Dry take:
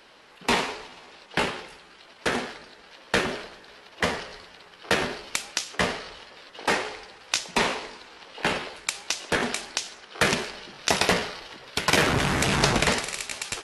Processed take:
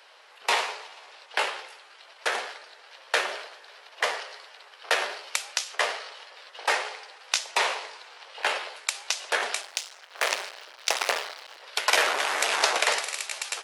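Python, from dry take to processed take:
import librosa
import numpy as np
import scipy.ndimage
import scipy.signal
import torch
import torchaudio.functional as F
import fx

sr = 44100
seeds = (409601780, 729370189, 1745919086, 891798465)

y = fx.cycle_switch(x, sr, every=2, mode='muted', at=(9.61, 11.63))
y = scipy.signal.sosfilt(scipy.signal.butter(4, 520.0, 'highpass', fs=sr, output='sos'), y)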